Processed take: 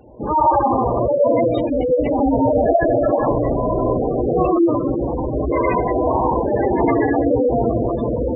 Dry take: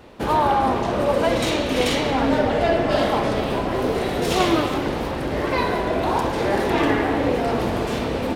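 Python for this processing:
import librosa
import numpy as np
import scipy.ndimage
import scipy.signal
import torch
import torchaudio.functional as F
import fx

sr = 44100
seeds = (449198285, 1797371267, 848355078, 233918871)

y = fx.rev_gated(x, sr, seeds[0], gate_ms=150, shape='rising', drr_db=-3.5)
y = fx.spec_gate(y, sr, threshold_db=-10, keep='strong')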